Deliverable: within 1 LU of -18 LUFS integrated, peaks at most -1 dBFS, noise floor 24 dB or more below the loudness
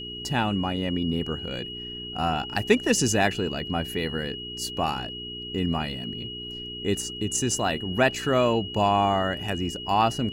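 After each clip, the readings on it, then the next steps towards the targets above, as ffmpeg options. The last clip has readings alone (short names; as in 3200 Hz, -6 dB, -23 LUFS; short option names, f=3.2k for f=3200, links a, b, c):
hum 60 Hz; harmonics up to 420 Hz; hum level -40 dBFS; steady tone 2900 Hz; tone level -35 dBFS; loudness -26.0 LUFS; peak -5.5 dBFS; loudness target -18.0 LUFS
-> -af "bandreject=f=60:t=h:w=4,bandreject=f=120:t=h:w=4,bandreject=f=180:t=h:w=4,bandreject=f=240:t=h:w=4,bandreject=f=300:t=h:w=4,bandreject=f=360:t=h:w=4,bandreject=f=420:t=h:w=4"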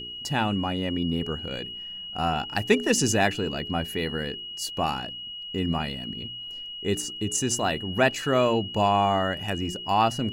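hum none; steady tone 2900 Hz; tone level -35 dBFS
-> -af "bandreject=f=2.9k:w=30"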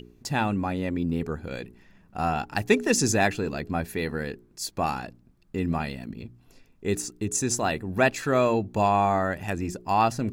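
steady tone none; loudness -26.5 LUFS; peak -6.0 dBFS; loudness target -18.0 LUFS
-> -af "volume=8.5dB,alimiter=limit=-1dB:level=0:latency=1"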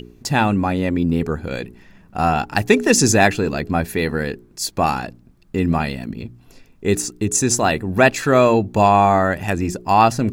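loudness -18.0 LUFS; peak -1.0 dBFS; noise floor -51 dBFS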